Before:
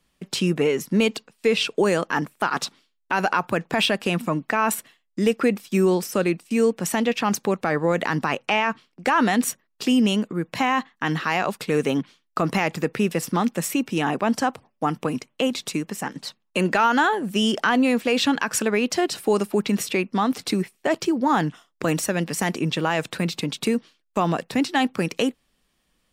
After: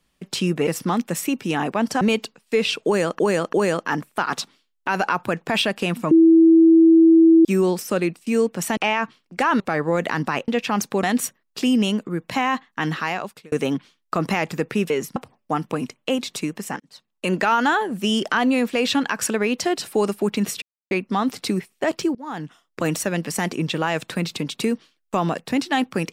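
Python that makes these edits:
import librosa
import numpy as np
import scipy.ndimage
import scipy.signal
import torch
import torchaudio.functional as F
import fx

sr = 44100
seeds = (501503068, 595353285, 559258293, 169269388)

y = fx.edit(x, sr, fx.swap(start_s=0.67, length_s=0.26, other_s=13.14, other_length_s=1.34),
    fx.repeat(start_s=1.77, length_s=0.34, count=3),
    fx.bleep(start_s=4.35, length_s=1.34, hz=327.0, db=-8.5),
    fx.swap(start_s=7.01, length_s=0.55, other_s=8.44, other_length_s=0.83),
    fx.fade_out_span(start_s=11.21, length_s=0.55),
    fx.fade_in_span(start_s=16.12, length_s=0.54),
    fx.insert_silence(at_s=19.94, length_s=0.29),
    fx.fade_in_from(start_s=21.18, length_s=0.72, floor_db=-23.5), tone=tone)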